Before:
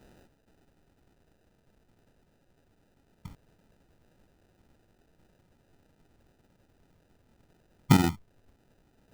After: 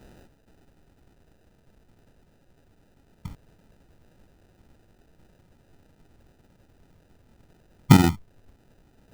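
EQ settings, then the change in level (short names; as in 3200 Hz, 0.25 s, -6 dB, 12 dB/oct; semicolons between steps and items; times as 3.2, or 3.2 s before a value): low shelf 130 Hz +4 dB; +5.0 dB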